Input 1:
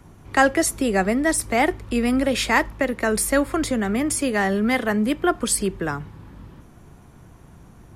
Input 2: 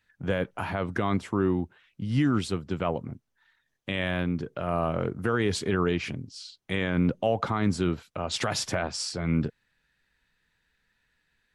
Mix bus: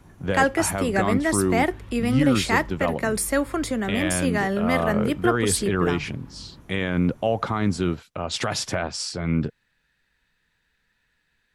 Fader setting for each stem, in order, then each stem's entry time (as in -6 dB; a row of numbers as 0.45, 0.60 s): -3.0, +2.5 dB; 0.00, 0.00 s